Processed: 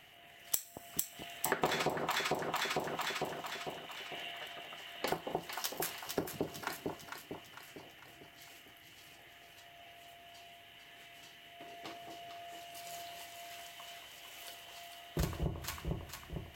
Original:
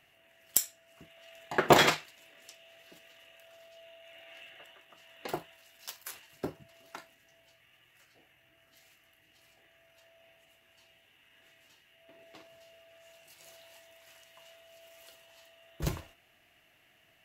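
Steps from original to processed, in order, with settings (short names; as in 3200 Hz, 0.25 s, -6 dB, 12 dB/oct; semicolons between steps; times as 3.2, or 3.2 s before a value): echo with dull and thin repeats by turns 0.235 s, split 890 Hz, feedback 69%, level -3.5 dB; speed mistake 24 fps film run at 25 fps; on a send at -20 dB: reverb RT60 2.3 s, pre-delay 6 ms; on the sum: compressor 6:1, threshold -38 dBFS, peak gain reduction 22 dB; gain +6.5 dB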